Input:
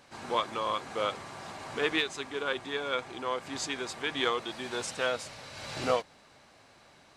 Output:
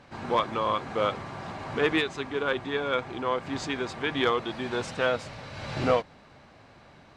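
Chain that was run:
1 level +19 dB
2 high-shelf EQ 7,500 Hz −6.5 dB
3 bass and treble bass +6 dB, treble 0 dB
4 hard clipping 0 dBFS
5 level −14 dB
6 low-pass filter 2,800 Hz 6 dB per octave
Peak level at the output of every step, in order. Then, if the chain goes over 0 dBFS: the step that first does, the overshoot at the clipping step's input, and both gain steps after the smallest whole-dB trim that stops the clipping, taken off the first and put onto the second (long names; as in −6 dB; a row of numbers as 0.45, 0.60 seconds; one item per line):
+5.5, +5.0, +5.5, 0.0, −14.0, −14.0 dBFS
step 1, 5.5 dB
step 1 +13 dB, step 5 −8 dB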